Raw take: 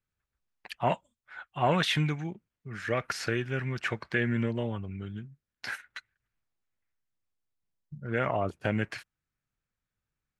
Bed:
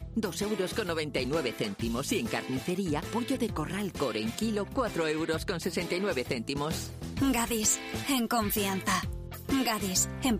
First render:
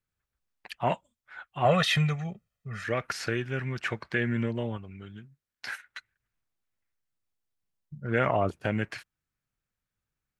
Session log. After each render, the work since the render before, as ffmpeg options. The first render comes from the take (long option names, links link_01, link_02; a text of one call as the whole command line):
ffmpeg -i in.wav -filter_complex "[0:a]asettb=1/sr,asplit=3[link_01][link_02][link_03];[link_01]atrim=end=1.654[link_04];[link_02]atrim=start=1.65:end=2.84,asetpts=PTS-STARTPTS,afade=type=in:duration=0.004:curve=qsin,afade=type=out:start_time=1.186:duration=0.004:curve=qsin,aecho=1:1:1.6:0.93,atrim=end_sample=52479[link_05];[link_03]atrim=start=2.836[link_06];[link_04][link_05]acrossfade=duration=0.004:curve1=hsin:curve2=qsin[link_07];[link_07][link_06]acrossfade=duration=0.004:curve1=qsin:curve2=hsin,asettb=1/sr,asplit=3[link_08][link_09][link_10];[link_08]atrim=end=4.774[link_11];[link_09]atrim=start=4.77:end=5.97,asetpts=PTS-STARTPTS,afade=type=in:duration=0.004:curve=qsin,afade=type=out:start_time=1.196:duration=0.004:curve=qsin,lowshelf=frequency=440:gain=-7[link_12];[link_10]atrim=start=5.966[link_13];[link_11][link_12]acrossfade=duration=0.004:curve1=hsin:curve2=qsin[link_14];[link_14][link_13]acrossfade=duration=0.004:curve1=qsin:curve2=hsin,asplit=3[link_15][link_16][link_17];[link_15]atrim=end=8.042[link_18];[link_16]atrim=start=8.038:end=8.622,asetpts=PTS-STARTPTS,volume=3.5dB[link_19];[link_17]atrim=start=8.618[link_20];[link_18][link_19]acrossfade=duration=0.004:curve1=hsin:curve2=hsin[link_21];[link_21][link_20]acrossfade=duration=0.004:curve1=hsin:curve2=hsin" out.wav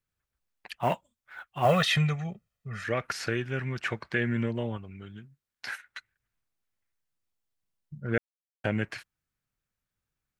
ffmpeg -i in.wav -filter_complex "[0:a]asplit=3[link_01][link_02][link_03];[link_01]afade=type=out:start_time=0.74:duration=0.02[link_04];[link_02]acrusher=bits=7:mode=log:mix=0:aa=0.000001,afade=type=in:start_time=0.74:duration=0.02,afade=type=out:start_time=1.86:duration=0.02[link_05];[link_03]afade=type=in:start_time=1.86:duration=0.02[link_06];[link_04][link_05][link_06]amix=inputs=3:normalize=0,asplit=3[link_07][link_08][link_09];[link_07]atrim=end=8.18,asetpts=PTS-STARTPTS,afade=type=out:start_time=8.176:duration=0.004:curve=hsin[link_10];[link_08]atrim=start=8.18:end=8.64,asetpts=PTS-STARTPTS,volume=0[link_11];[link_09]atrim=start=8.64,asetpts=PTS-STARTPTS,afade=type=in:duration=0.004:curve=hsin[link_12];[link_10][link_11][link_12]concat=n=3:v=0:a=1" out.wav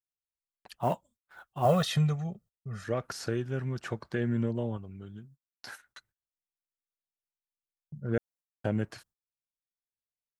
ffmpeg -i in.wav -af "agate=range=-24dB:threshold=-56dB:ratio=16:detection=peak,equalizer=frequency=2200:width=1.1:gain=-14.5" out.wav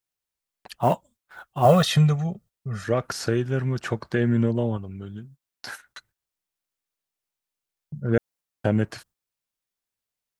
ffmpeg -i in.wav -af "volume=8dB" out.wav